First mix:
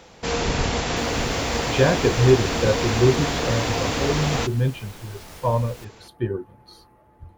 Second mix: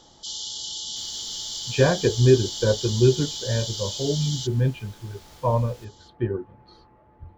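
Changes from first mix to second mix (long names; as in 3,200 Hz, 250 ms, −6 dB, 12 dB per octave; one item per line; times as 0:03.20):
speech: add high-frequency loss of the air 200 metres
first sound: add linear-phase brick-wall high-pass 2,900 Hz
second sound −8.5 dB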